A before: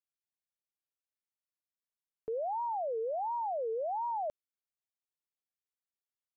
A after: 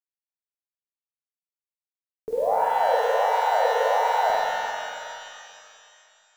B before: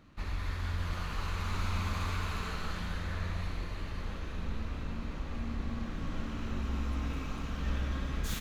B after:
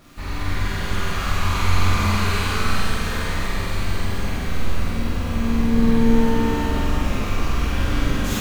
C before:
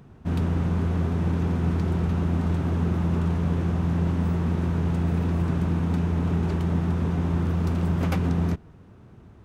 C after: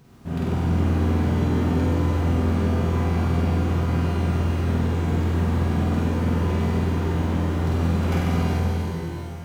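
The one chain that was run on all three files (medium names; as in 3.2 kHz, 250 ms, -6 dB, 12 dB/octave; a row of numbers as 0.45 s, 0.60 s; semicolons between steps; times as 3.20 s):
word length cut 10-bit, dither none; on a send: flutter echo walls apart 8.2 m, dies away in 1.1 s; on the sum: pitch-shifted reverb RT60 2.4 s, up +12 st, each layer -8 dB, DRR -2 dB; normalise loudness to -23 LUFS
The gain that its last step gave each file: +6.5 dB, +6.5 dB, -4.5 dB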